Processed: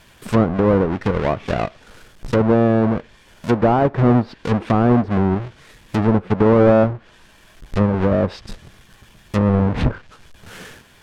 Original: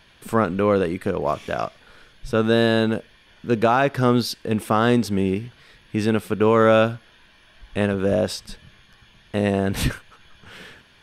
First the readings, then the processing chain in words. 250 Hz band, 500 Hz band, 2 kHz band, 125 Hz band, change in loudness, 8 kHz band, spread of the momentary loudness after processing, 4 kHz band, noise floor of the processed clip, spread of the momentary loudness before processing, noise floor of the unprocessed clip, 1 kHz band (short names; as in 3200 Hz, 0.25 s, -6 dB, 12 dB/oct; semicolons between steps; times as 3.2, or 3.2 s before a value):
+4.5 dB, +2.0 dB, -2.5 dB, +7.0 dB, +3.0 dB, n/a, 10 LU, -7.0 dB, -50 dBFS, 12 LU, -54 dBFS, +1.5 dB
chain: half-waves squared off; treble ducked by the level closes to 1000 Hz, closed at -13 dBFS